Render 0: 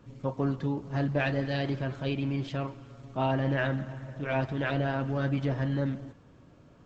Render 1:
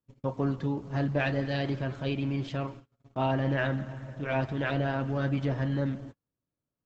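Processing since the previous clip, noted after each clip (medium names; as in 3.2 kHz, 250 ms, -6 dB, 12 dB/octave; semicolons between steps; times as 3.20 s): gate -43 dBFS, range -34 dB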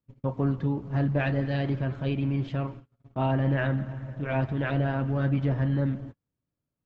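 tone controls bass +5 dB, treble -11 dB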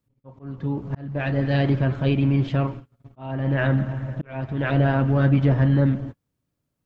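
slow attack 621 ms; trim +7.5 dB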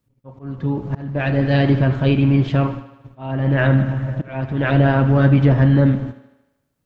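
thinning echo 76 ms, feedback 61%, high-pass 170 Hz, level -14 dB; trim +5 dB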